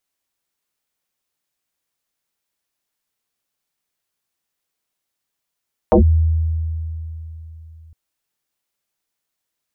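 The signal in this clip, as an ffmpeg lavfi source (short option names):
-f lavfi -i "aevalsrc='0.447*pow(10,-3*t/3.54)*sin(2*PI*80.6*t+6.1*clip(1-t/0.11,0,1)*sin(2*PI*1.72*80.6*t))':d=2.01:s=44100"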